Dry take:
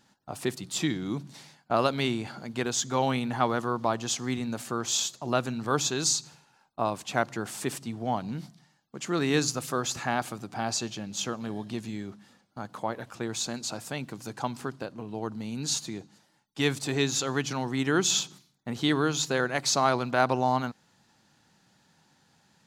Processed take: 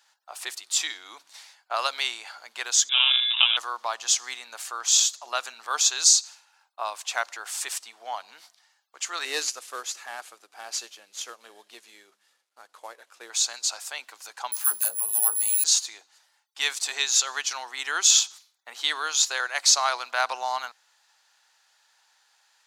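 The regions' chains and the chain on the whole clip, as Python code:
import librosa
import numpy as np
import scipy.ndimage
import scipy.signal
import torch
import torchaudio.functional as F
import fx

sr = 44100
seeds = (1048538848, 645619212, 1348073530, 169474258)

y = fx.chain(x, sr, fx.sample_hold(seeds[0], rate_hz=1800.0, jitter_pct=0),
    fx.freq_invert(carrier_hz=3700), at=(2.89, 3.57))
y = fx.chain(y, sr, fx.cvsd(bps=64000),
    fx.low_shelf_res(hz=580.0, db=7.5, q=1.5),
    fx.upward_expand(threshold_db=-32.0, expansion=1.5), at=(9.25, 13.3))
y = fx.chain(y, sr, fx.resample_bad(factor=4, down='filtered', up='zero_stuff'),
    fx.doubler(ms=19.0, db=-6.0),
    fx.dispersion(late='lows', ms=71.0, hz=560.0), at=(14.52, 15.64))
y = fx.dynamic_eq(y, sr, hz=6300.0, q=0.81, threshold_db=-44.0, ratio=4.0, max_db=6)
y = scipy.signal.sosfilt(scipy.signal.bessel(4, 1100.0, 'highpass', norm='mag', fs=sr, output='sos'), y)
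y = y * librosa.db_to_amplitude(3.5)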